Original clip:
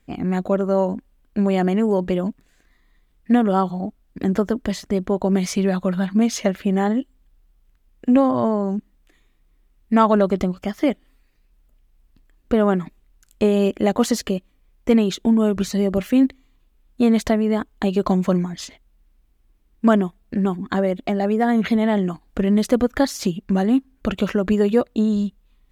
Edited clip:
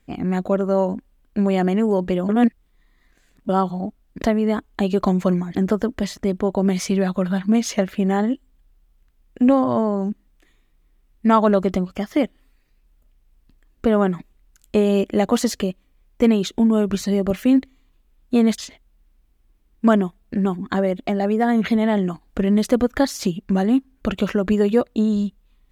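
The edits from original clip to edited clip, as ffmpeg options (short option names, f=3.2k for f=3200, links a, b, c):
-filter_complex "[0:a]asplit=6[a][b][c][d][e][f];[a]atrim=end=2.292[g];[b]atrim=start=2.288:end=3.492,asetpts=PTS-STARTPTS,areverse[h];[c]atrim=start=3.488:end=4.222[i];[d]atrim=start=17.248:end=18.582[j];[e]atrim=start=4.218:end=17.252[k];[f]atrim=start=18.578[l];[g][h]acrossfade=d=0.004:c1=hsin:c2=hsin[m];[m][i]acrossfade=d=0.004:c1=hsin:c2=hsin[n];[n][j]acrossfade=d=0.004:c1=hsin:c2=hsin[o];[o][k]acrossfade=d=0.004:c1=hsin:c2=hsin[p];[p][l]acrossfade=d=0.004:c1=hsin:c2=hsin"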